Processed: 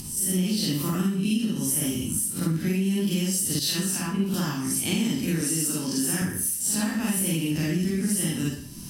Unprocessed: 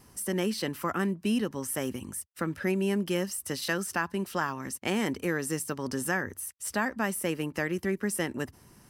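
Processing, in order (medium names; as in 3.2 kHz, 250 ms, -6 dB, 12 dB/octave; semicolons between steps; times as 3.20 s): reverse spectral sustain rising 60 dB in 0.32 s; high-order bell 920 Hz -15.5 dB 2.8 oct; Schroeder reverb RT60 0.51 s, DRR -5 dB; upward compressor, threshold -34 dBFS; 5.41–6.22 s: high-pass 190 Hz 12 dB/octave; compression, threshold -27 dBFS, peak gain reduction 10 dB; 3.59–4.34 s: three bands expanded up and down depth 100%; trim +5.5 dB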